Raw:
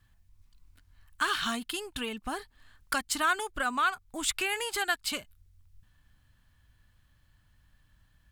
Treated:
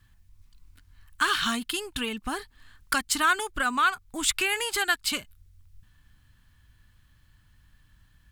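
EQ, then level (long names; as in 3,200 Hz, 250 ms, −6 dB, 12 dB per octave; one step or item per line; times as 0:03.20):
parametric band 630 Hz −6 dB 0.84 octaves
+5.0 dB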